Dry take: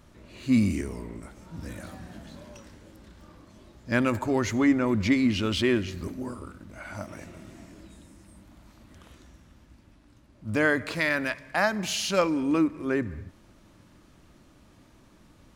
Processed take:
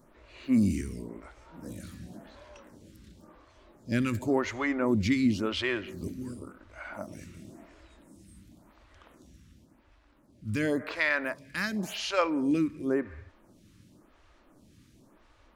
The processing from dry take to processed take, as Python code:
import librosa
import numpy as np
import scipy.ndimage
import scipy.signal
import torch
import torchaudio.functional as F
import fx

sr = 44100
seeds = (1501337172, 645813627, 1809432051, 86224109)

y = fx.stagger_phaser(x, sr, hz=0.93)